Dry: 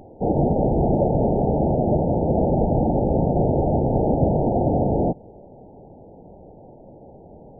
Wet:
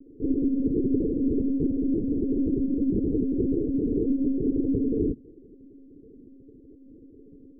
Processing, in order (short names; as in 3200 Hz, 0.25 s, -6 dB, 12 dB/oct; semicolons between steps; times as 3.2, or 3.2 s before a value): elliptic band-pass 190–420 Hz, stop band 40 dB; monotone LPC vocoder at 8 kHz 270 Hz